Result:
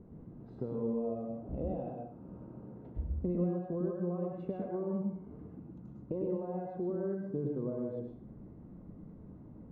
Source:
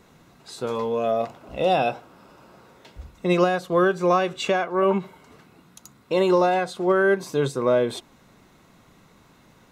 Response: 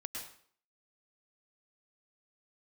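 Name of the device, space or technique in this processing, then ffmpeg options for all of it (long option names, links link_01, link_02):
television next door: -filter_complex "[0:a]acompressor=threshold=-36dB:ratio=4,lowpass=320[link_01];[1:a]atrim=start_sample=2205[link_02];[link_01][link_02]afir=irnorm=-1:irlink=0,volume=8.5dB"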